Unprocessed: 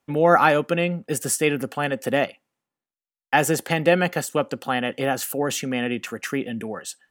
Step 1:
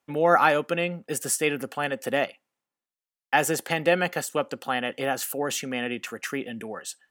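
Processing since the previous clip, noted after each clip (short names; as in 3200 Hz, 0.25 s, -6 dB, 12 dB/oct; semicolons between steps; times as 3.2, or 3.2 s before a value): low shelf 270 Hz -8 dB; gain -2 dB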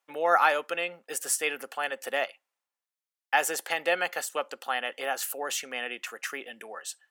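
HPF 610 Hz 12 dB/oct; gain -1.5 dB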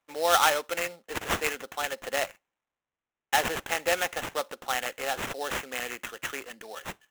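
sample-rate reducer 4700 Hz, jitter 20%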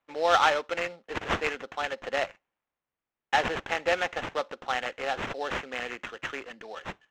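air absorption 160 m; gain +1.5 dB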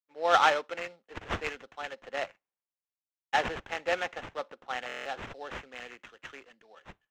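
stuck buffer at 4.87, samples 1024, times 7; three-band expander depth 70%; gain -6 dB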